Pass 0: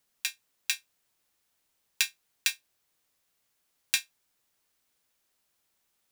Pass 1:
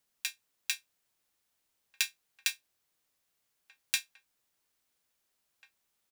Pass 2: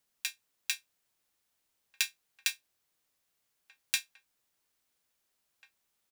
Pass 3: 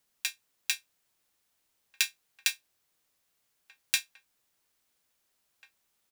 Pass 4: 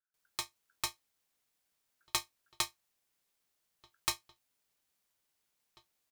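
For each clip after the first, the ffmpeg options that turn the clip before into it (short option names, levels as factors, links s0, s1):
-filter_complex "[0:a]asplit=2[s0][s1];[s1]adelay=1691,volume=0.158,highshelf=f=4000:g=-38[s2];[s0][s2]amix=inputs=2:normalize=0,volume=0.668"
-af anull
-af "acrusher=bits=5:mode=log:mix=0:aa=0.000001,volume=1.41"
-filter_complex "[0:a]acrossover=split=180[s0][s1];[s1]adelay=140[s2];[s0][s2]amix=inputs=2:normalize=0,aeval=exprs='val(0)*sin(2*PI*1500*n/s)':c=same,volume=0.794"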